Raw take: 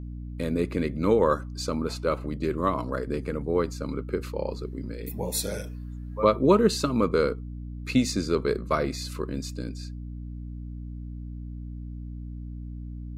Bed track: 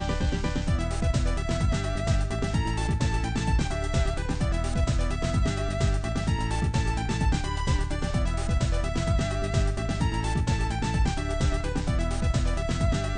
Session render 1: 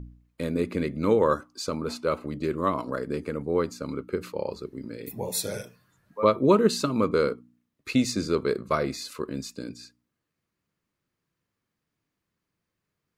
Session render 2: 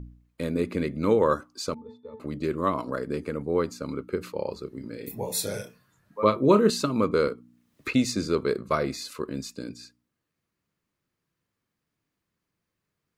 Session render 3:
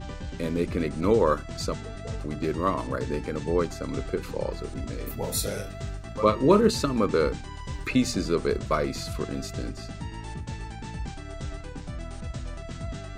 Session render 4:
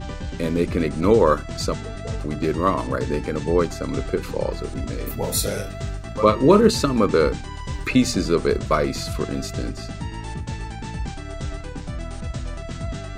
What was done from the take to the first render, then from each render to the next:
de-hum 60 Hz, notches 5
1.74–2.20 s: pitch-class resonator A, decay 0.21 s; 4.63–6.70 s: doubling 29 ms -9.5 dB; 7.27–7.94 s: three bands compressed up and down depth 100%
add bed track -10 dB
trim +5.5 dB; peak limiter -3 dBFS, peak gain reduction 2 dB

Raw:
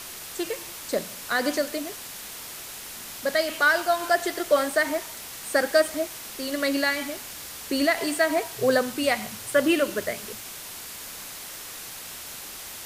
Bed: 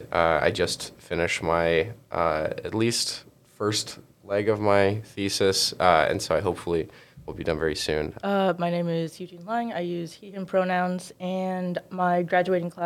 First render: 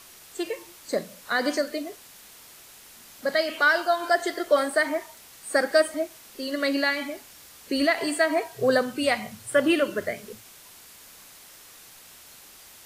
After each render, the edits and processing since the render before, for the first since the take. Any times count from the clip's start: noise print and reduce 10 dB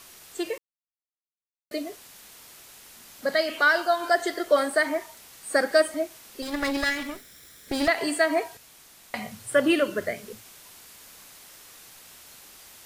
0.58–1.71 s: mute; 6.42–7.88 s: comb filter that takes the minimum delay 0.54 ms; 8.57–9.14 s: room tone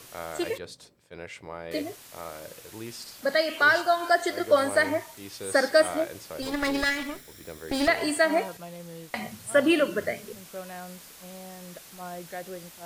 add bed -16 dB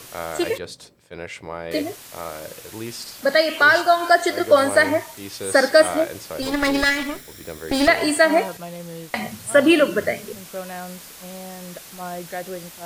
trim +7 dB; peak limiter -3 dBFS, peak gain reduction 2 dB

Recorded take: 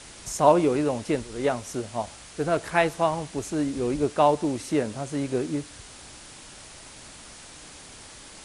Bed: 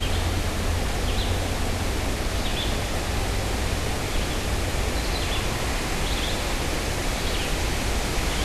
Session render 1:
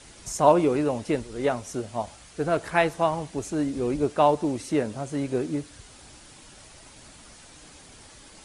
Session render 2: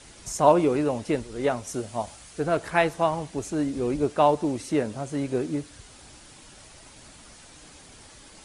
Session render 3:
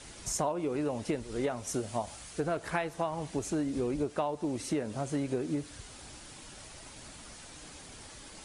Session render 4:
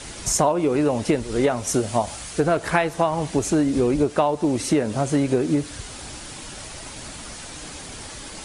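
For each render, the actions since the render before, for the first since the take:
noise reduction 6 dB, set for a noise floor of -46 dBFS
1.67–2.40 s: treble shelf 8 kHz +7.5 dB
compression 12:1, threshold -28 dBFS, peak gain reduction 17 dB
trim +12 dB

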